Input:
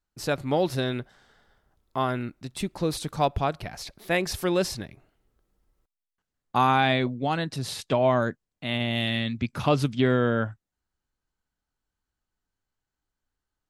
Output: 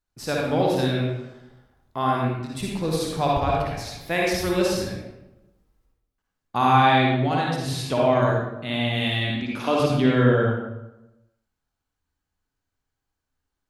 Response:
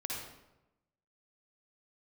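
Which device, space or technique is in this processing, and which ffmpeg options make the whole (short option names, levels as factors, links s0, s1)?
bathroom: -filter_complex "[0:a]asettb=1/sr,asplit=3[s0][s1][s2];[s0]atrim=end=9.304[s3];[s1]atrim=start=9.3:end=9.8,asetpts=PTS-STARTPTS,afade=t=in:d=0.004:c=qsin,afade=t=out:st=0.496:d=0.004:c=qsin,highpass=f=230:w=0.5412,highpass=f=230:w=1.3066[s4];[s2]atrim=start=9.796[s5];[s3][s4]acrossfade=d=0.004:c1=hsin:c2=qsin[s6];[s6][s5]acrossfade=d=0.004:c1=qsin:c2=hsin[s7];[1:a]atrim=start_sample=2205[s8];[s7][s8]afir=irnorm=-1:irlink=0,volume=1.19"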